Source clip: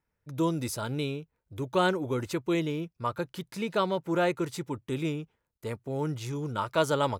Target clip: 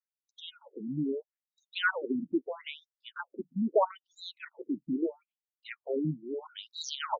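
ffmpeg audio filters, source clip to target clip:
-af "afftdn=nr=22:nf=-50,afftfilt=real='re*between(b*sr/1024,210*pow(5300/210,0.5+0.5*sin(2*PI*0.77*pts/sr))/1.41,210*pow(5300/210,0.5+0.5*sin(2*PI*0.77*pts/sr))*1.41)':imag='im*between(b*sr/1024,210*pow(5300/210,0.5+0.5*sin(2*PI*0.77*pts/sr))/1.41,210*pow(5300/210,0.5+0.5*sin(2*PI*0.77*pts/sr))*1.41)':win_size=1024:overlap=0.75,volume=5dB"

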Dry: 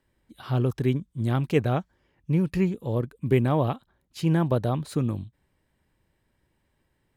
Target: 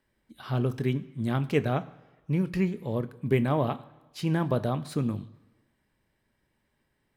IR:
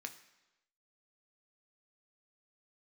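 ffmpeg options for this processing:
-filter_complex "[0:a]asplit=2[a][b];[1:a]atrim=start_sample=2205,asetrate=38808,aresample=44100[c];[b][c]afir=irnorm=-1:irlink=0,volume=2dB[d];[a][d]amix=inputs=2:normalize=0,volume=-6.5dB"

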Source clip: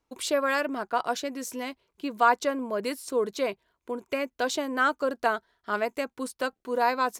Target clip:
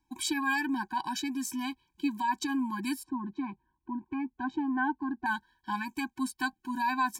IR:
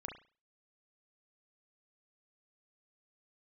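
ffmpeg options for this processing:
-filter_complex "[0:a]asettb=1/sr,asplit=3[a][b][c];[a]atrim=end=3.034[d];[b]atrim=start=3.03:end=5.26,asetpts=PTS-STARTPTS,afade=t=in:d=0.004:c=qsin,afade=t=out:st=2.226:d=0.004:c=qsin,lowpass=1k[e];[c]atrim=start=5.256[f];[d][e]acrossfade=d=0.004:c1=hsin:c2=qsin[g];[g][f]acrossfade=d=0.004:c1=qsin:c2=hsin,alimiter=limit=-18dB:level=0:latency=1:release=45,afftfilt=real='re*eq(mod(floor(b*sr/1024/370),2),0)':imag='im*eq(mod(floor(b*sr/1024/370),2),0)':win_size=1024:overlap=0.75,volume=3dB"

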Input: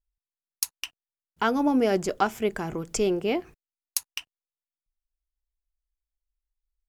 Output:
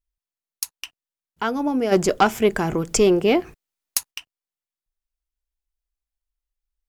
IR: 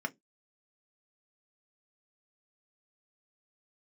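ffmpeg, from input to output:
-filter_complex "[0:a]asplit=3[a][b][c];[a]afade=t=out:st=1.91:d=0.02[d];[b]aeval=exprs='0.596*(cos(1*acos(clip(val(0)/0.596,-1,1)))-cos(1*PI/2))+0.211*(cos(5*acos(clip(val(0)/0.596,-1,1)))-cos(5*PI/2))':c=same,afade=t=in:st=1.91:d=0.02,afade=t=out:st=4.1:d=0.02[e];[c]afade=t=in:st=4.1:d=0.02[f];[d][e][f]amix=inputs=3:normalize=0"

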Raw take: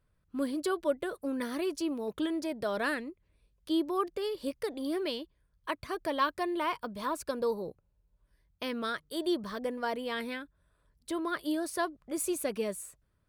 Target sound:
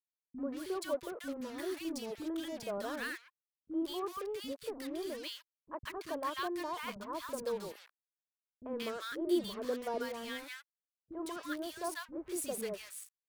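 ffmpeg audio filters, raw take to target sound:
-filter_complex "[0:a]asettb=1/sr,asplit=3[a][b][c];[a]atrim=end=7.684[d];[b]atrim=start=7.68:end=10.05,asetpts=PTS-STARTPTS,afade=t=in:d=0.004:c=qsin,afade=t=out:st=2.366:d=0.004:c=qsin,adynamicequalizer=threshold=0.00562:dfrequency=400:dqfactor=1.4:tfrequency=400:tqfactor=1.4:attack=5:release=100:ratio=0.375:range=3.5:mode=boostabove:tftype=bell[e];[c]atrim=start=10.046[f];[d][e]acrossfade=d=0.004:c1=hsin:c2=qsin[g];[g][f]acrossfade=d=0.004:c1=qsin:c2=hsin,acrusher=bits=6:mix=0:aa=0.5,acrossover=split=290|1200[h][i][j];[i]adelay=40[k];[j]adelay=180[l];[h][k][l]amix=inputs=3:normalize=0,volume=-4.5dB"

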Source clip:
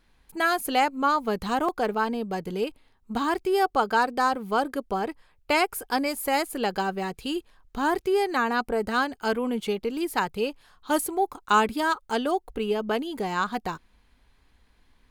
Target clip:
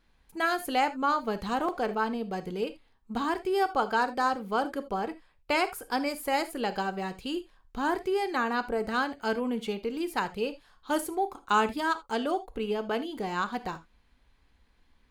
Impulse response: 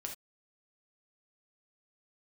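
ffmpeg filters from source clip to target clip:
-filter_complex "[0:a]asplit=2[a][b];[1:a]atrim=start_sample=2205,lowpass=8.8k[c];[b][c]afir=irnorm=-1:irlink=0,volume=-2dB[d];[a][d]amix=inputs=2:normalize=0,volume=-7.5dB"

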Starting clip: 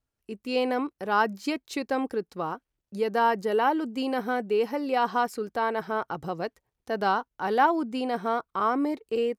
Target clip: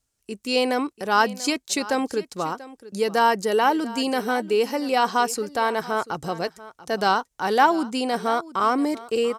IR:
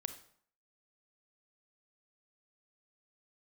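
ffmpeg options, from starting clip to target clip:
-filter_complex "[0:a]equalizer=f=7.6k:t=o:w=1.7:g=14.5,asplit=2[a][b];[b]aecho=0:1:688:0.133[c];[a][c]amix=inputs=2:normalize=0,volume=3.5dB"

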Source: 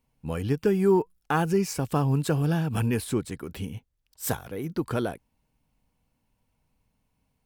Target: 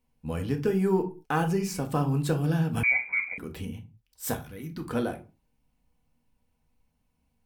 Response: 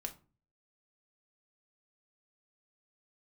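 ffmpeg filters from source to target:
-filter_complex "[0:a]asettb=1/sr,asplit=3[a][b][c];[a]atrim=end=4.344[d];[b]atrim=start=4.34:end=4.84,asetpts=PTS-STARTPTS,afade=t=in:d=0.004:c=qsin,afade=t=out:st=0.496:d=0.004:c=qsin,equalizer=f=530:w=0.84:g=-12[e];[c]atrim=start=4.836[f];[d][e]acrossfade=d=0.004:c1=hsin:c2=qsin[g];[g][f]acrossfade=d=0.004:c1=qsin:c2=hsin[h];[1:a]atrim=start_sample=2205,afade=t=out:st=0.29:d=0.01,atrim=end_sample=13230[i];[h][i]afir=irnorm=-1:irlink=0,asettb=1/sr,asplit=3[j][k][l];[j]atrim=end=2.834[m];[k]atrim=start=2.83:end=3.38,asetpts=PTS-STARTPTS,afade=t=in:d=0.004:c=qsin,afade=t=out:st=0.546:d=0.004:c=qsin,lowpass=f=2.1k:t=q:w=0.5098,lowpass=f=2.1k:t=q:w=0.6013,lowpass=f=2.1k:t=q:w=0.9,lowpass=f=2.1k:t=q:w=2.563,afreqshift=-2500[n];[l]atrim=start=3.376[o];[m][n]acrossfade=d=0.004:c1=hsin:c2=qsin[p];[p][o]acrossfade=d=0.004:c1=qsin:c2=hsin"

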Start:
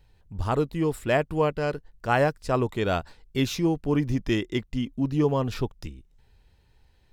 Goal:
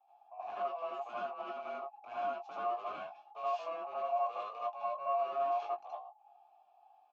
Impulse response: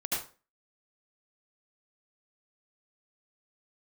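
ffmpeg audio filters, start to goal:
-filter_complex "[0:a]acrossover=split=110|710[a][b][c];[a]acompressor=threshold=-40dB:ratio=4[d];[b]acompressor=threshold=-23dB:ratio=4[e];[c]acompressor=threshold=-29dB:ratio=4[f];[d][e][f]amix=inputs=3:normalize=0,aeval=exprs='val(0)*sin(2*PI*830*n/s)':c=same,aresample=16000,asoftclip=type=tanh:threshold=-31.5dB,aresample=44100,asplit=3[g][h][i];[g]bandpass=f=730:t=q:w=8,volume=0dB[j];[h]bandpass=f=1.09k:t=q:w=8,volume=-6dB[k];[i]bandpass=f=2.44k:t=q:w=8,volume=-9dB[l];[j][k][l]amix=inputs=3:normalize=0,asplit=2[m][n];[n]adelay=20,volume=-6dB[o];[m][o]amix=inputs=2:normalize=0[p];[1:a]atrim=start_sample=2205,afade=t=out:st=0.14:d=0.01,atrim=end_sample=6615[q];[p][q]afir=irnorm=-1:irlink=0"

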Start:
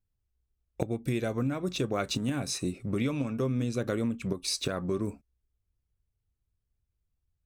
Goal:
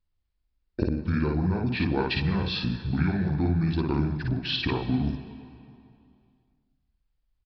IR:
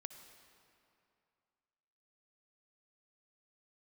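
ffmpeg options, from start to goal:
-filter_complex "[0:a]asetrate=29433,aresample=44100,atempo=1.49831,asplit=2[a][b];[1:a]atrim=start_sample=2205,adelay=55[c];[b][c]afir=irnorm=-1:irlink=0,volume=2.5dB[d];[a][d]amix=inputs=2:normalize=0,aresample=11025,aresample=44100,volume=3dB"

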